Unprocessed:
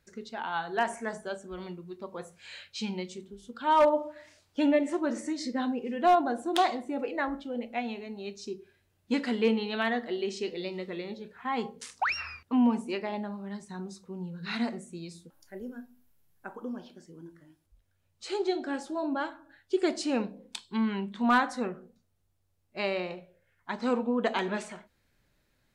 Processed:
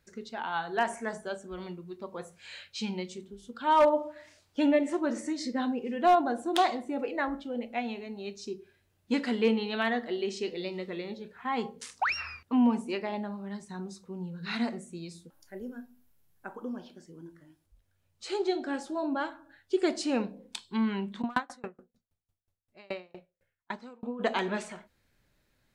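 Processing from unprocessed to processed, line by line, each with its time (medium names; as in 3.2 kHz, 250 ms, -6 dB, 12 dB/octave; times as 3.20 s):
21.21–24.19 s: sawtooth tremolo in dB decaying 8.1 Hz -> 2.7 Hz, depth 34 dB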